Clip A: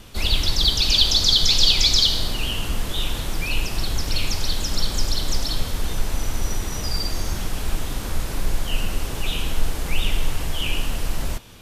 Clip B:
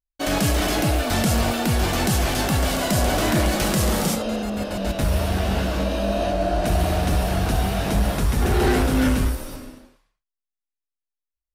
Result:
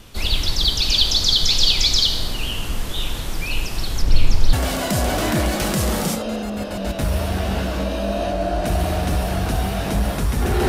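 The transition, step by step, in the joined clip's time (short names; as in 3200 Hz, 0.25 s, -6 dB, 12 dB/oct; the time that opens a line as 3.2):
clip A
4.02–4.53 tilt -2 dB/oct
4.53 switch to clip B from 2.53 s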